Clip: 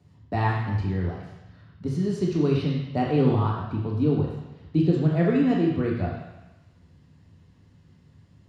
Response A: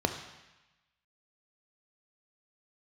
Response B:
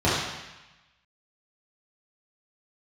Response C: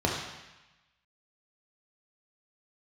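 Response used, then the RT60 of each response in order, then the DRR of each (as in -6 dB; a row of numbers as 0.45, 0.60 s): C; 1.0, 1.0, 1.0 s; 6.0, -10.0, -2.0 dB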